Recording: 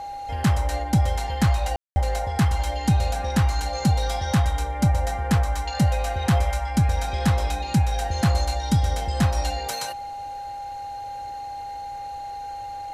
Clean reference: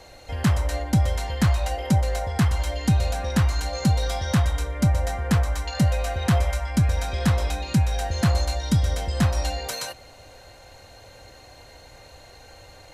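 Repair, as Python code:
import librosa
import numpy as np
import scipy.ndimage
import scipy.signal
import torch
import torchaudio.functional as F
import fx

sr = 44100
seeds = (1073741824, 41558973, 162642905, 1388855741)

y = fx.notch(x, sr, hz=810.0, q=30.0)
y = fx.fix_ambience(y, sr, seeds[0], print_start_s=11.97, print_end_s=12.47, start_s=1.76, end_s=1.96)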